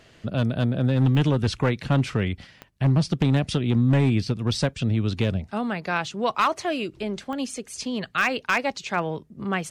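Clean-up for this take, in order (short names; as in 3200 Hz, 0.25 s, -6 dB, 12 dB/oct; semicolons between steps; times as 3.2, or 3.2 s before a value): clip repair -13.5 dBFS; de-click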